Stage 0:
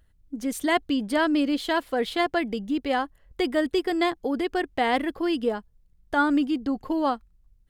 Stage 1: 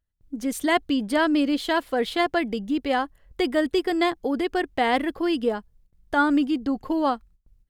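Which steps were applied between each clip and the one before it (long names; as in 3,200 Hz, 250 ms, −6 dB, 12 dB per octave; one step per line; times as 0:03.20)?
noise gate with hold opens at −52 dBFS
level +1.5 dB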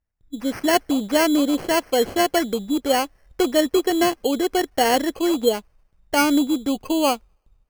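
dynamic equaliser 510 Hz, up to +6 dB, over −36 dBFS, Q 1
delay with a high-pass on its return 79 ms, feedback 76%, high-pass 5,600 Hz, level −23 dB
decimation without filtering 12×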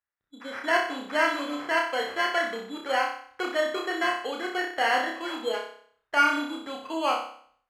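resonant band-pass 1,500 Hz, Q 1.7
on a send: flutter between parallel walls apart 5.3 metres, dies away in 0.56 s
on the sum: level +1 dB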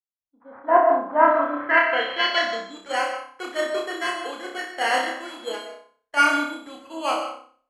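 low-pass filter sweep 920 Hz → 10,000 Hz, 0:01.15–0:03.04
convolution reverb RT60 0.60 s, pre-delay 90 ms, DRR 6.5 dB
multiband upward and downward expander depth 70%
level +1 dB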